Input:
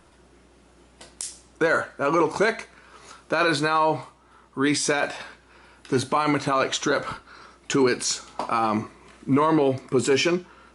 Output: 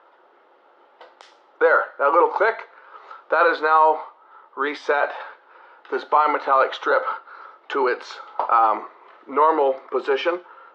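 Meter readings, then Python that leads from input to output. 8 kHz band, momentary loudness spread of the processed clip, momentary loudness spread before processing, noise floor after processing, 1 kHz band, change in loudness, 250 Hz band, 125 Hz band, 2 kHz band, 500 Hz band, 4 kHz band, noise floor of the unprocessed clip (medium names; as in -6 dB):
under -20 dB, 13 LU, 14 LU, -56 dBFS, +6.5 dB, +3.0 dB, -9.0 dB, under -30 dB, +2.5 dB, +3.0 dB, -6.5 dB, -56 dBFS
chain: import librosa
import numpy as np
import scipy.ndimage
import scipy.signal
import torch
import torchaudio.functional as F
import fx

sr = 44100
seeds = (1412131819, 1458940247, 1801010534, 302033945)

y = fx.cabinet(x, sr, low_hz=400.0, low_slope=24, high_hz=3300.0, hz=(510.0, 860.0, 1300.0, 2500.0), db=(7, 9, 8, -6))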